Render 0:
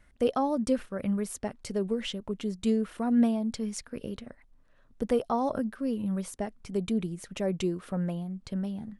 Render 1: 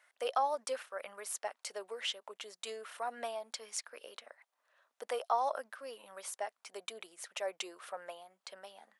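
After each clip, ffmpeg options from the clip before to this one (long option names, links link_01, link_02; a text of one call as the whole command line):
ffmpeg -i in.wav -af "highpass=frequency=640:width=0.5412,highpass=frequency=640:width=1.3066" out.wav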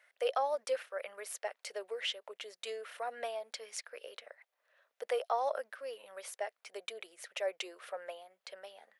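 ffmpeg -i in.wav -af "equalizer=frequency=125:width_type=o:width=1:gain=-11,equalizer=frequency=250:width_type=o:width=1:gain=-7,equalizer=frequency=500:width_type=o:width=1:gain=7,equalizer=frequency=1000:width_type=o:width=1:gain=-6,equalizer=frequency=2000:width_type=o:width=1:gain=4,equalizer=frequency=8000:width_type=o:width=1:gain=-5" out.wav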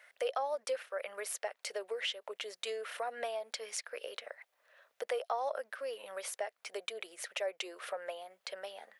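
ffmpeg -i in.wav -af "acompressor=threshold=-46dB:ratio=2,volume=7dB" out.wav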